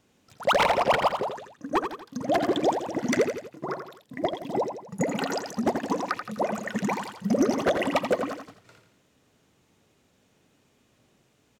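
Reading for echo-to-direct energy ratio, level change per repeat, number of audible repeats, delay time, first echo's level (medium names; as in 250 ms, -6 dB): -6.5 dB, -6.5 dB, 3, 84 ms, -7.5 dB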